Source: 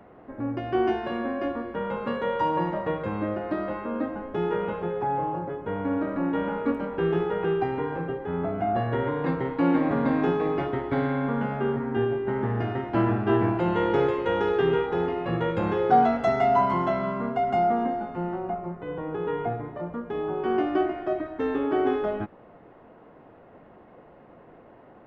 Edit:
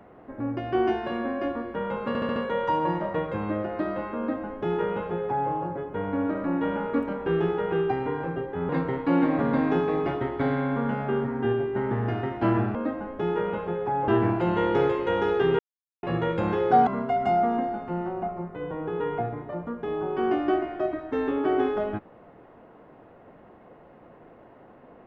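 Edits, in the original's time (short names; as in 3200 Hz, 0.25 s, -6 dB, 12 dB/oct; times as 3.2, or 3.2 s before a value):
2.08 stutter 0.07 s, 5 plays
3.9–5.23 copy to 13.27
8.41–9.21 cut
14.78–15.22 mute
16.06–17.14 cut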